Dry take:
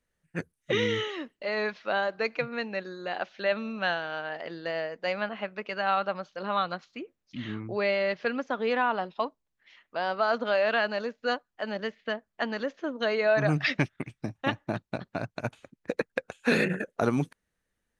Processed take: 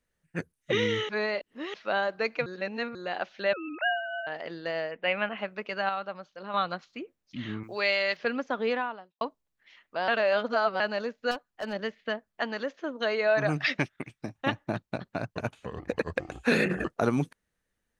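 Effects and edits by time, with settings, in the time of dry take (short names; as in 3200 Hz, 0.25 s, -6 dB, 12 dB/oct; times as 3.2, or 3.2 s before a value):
1.09–1.74 reverse
2.46–2.95 reverse
3.53–4.27 sine-wave speech
4.91–5.38 resonant high shelf 3800 Hz -12 dB, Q 3
5.89–6.54 gain -6.5 dB
7.63–8.17 tilt +4 dB/oct
8.69–9.21 fade out quadratic
10.08–10.8 reverse
11.31–11.73 overloaded stage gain 28 dB
12.41–14.36 low shelf 210 Hz -7 dB
14.94–16.94 echoes that change speed 0.416 s, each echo -6 st, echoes 2, each echo -6 dB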